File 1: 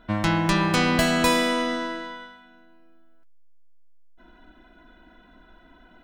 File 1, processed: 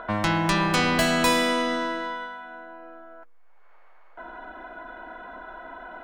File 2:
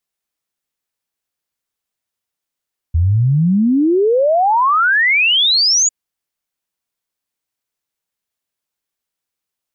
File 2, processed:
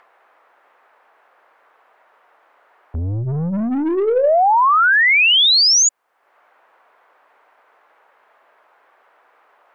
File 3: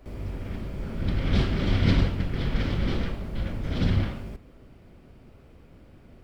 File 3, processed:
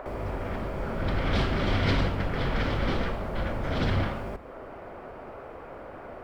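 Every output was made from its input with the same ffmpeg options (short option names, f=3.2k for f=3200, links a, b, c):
-filter_complex "[0:a]bandreject=f=60:t=h:w=6,bandreject=f=120:t=h:w=6,bandreject=f=180:t=h:w=6,bandreject=f=240:t=h:w=6,bandreject=f=300:t=h:w=6,bandreject=f=360:t=h:w=6,bandreject=f=420:t=h:w=6,bandreject=f=480:t=h:w=6,bandreject=f=540:t=h:w=6,acrossover=split=480|1600[a][b][c];[a]aeval=exprs='(tanh(11.2*val(0)+0.15)-tanh(0.15))/11.2':c=same[d];[b]acompressor=mode=upward:threshold=-24dB:ratio=2.5[e];[d][e][c]amix=inputs=3:normalize=0"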